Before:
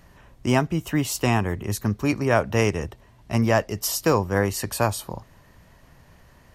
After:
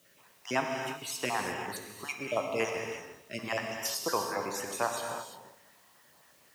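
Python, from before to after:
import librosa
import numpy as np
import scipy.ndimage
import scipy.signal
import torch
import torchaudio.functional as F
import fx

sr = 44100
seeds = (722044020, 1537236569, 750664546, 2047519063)

p1 = fx.spec_dropout(x, sr, seeds[0], share_pct=40)
p2 = fx.weighting(p1, sr, curve='A')
p3 = fx.quant_dither(p2, sr, seeds[1], bits=10, dither='triangular')
p4 = scipy.signal.sosfilt(scipy.signal.butter(2, 58.0, 'highpass', fs=sr, output='sos'), p3)
p5 = p4 + fx.echo_feedback(p4, sr, ms=128, feedback_pct=56, wet_db=-19, dry=0)
p6 = fx.rev_gated(p5, sr, seeds[2], gate_ms=380, shape='flat', drr_db=2.0)
y = p6 * librosa.db_to_amplitude(-6.5)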